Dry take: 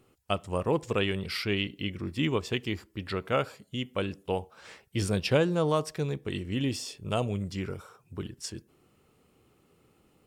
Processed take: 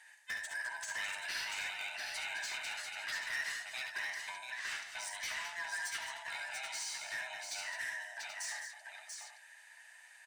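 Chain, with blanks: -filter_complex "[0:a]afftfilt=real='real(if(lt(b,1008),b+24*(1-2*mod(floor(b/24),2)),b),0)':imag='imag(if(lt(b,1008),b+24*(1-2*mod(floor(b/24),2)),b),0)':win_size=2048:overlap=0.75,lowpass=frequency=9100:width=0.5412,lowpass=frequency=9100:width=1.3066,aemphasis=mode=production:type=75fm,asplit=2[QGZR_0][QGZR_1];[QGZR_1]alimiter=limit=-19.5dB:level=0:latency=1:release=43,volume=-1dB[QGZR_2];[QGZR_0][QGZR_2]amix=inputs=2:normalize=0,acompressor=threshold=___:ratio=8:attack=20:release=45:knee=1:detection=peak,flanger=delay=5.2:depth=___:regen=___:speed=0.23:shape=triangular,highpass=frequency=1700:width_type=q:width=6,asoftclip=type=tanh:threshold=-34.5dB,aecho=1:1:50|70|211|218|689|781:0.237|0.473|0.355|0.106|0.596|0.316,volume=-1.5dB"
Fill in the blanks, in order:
-37dB, 9.4, -33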